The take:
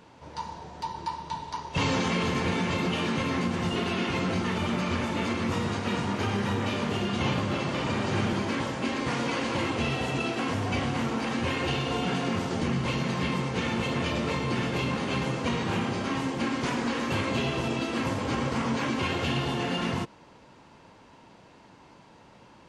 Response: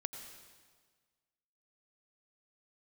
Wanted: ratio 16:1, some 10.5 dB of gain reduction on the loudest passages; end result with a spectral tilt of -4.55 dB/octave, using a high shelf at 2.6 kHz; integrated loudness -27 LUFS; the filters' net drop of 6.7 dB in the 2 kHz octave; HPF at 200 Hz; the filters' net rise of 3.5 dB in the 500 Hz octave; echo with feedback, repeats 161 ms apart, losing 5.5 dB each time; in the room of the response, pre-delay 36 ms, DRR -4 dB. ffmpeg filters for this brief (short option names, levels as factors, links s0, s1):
-filter_complex "[0:a]highpass=200,equalizer=f=500:t=o:g=5,equalizer=f=2000:t=o:g=-6.5,highshelf=f=2600:g=-5,acompressor=threshold=0.0178:ratio=16,aecho=1:1:161|322|483|644|805|966|1127:0.531|0.281|0.149|0.079|0.0419|0.0222|0.0118,asplit=2[s0][s1];[1:a]atrim=start_sample=2205,adelay=36[s2];[s1][s2]afir=irnorm=-1:irlink=0,volume=1.78[s3];[s0][s3]amix=inputs=2:normalize=0,volume=1.88"